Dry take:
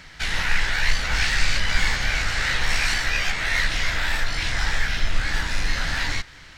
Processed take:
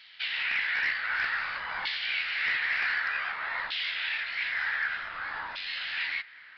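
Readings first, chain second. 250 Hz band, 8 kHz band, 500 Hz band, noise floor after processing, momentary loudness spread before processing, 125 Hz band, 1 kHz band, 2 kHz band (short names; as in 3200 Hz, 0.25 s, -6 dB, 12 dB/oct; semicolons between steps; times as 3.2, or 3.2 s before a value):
under -20 dB, under -30 dB, -14.5 dB, -51 dBFS, 4 LU, under -30 dB, -6.0 dB, -4.5 dB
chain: LFO band-pass saw down 0.54 Hz 950–3400 Hz; wavefolder -21.5 dBFS; downsampling 11025 Hz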